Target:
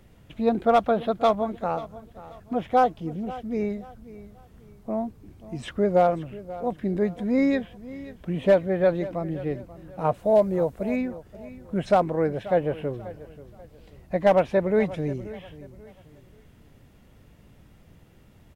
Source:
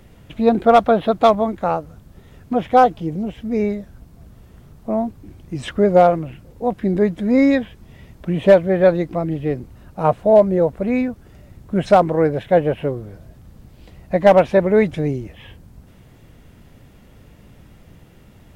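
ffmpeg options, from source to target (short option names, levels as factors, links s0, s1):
-filter_complex "[0:a]asettb=1/sr,asplit=3[s0][s1][s2];[s0]atrim=end=10.144[s3];[s1]atrim=start=10.14:end=10.96,asetpts=PTS-STARTPTS,afade=t=in:d=0.004:c=qsin,afade=t=out:st=0.816:d=0.004:c=qsin,highshelf=f=4600:g=9[s4];[s2]atrim=start=10.956[s5];[s3][s4]acrossfade=d=0.004:c1=hsin:c2=qsin[s6];[s6][s5]acrossfade=d=0.004:c1=qsin:c2=hsin,aecho=1:1:535|1070|1605:0.141|0.0452|0.0145,volume=0.422"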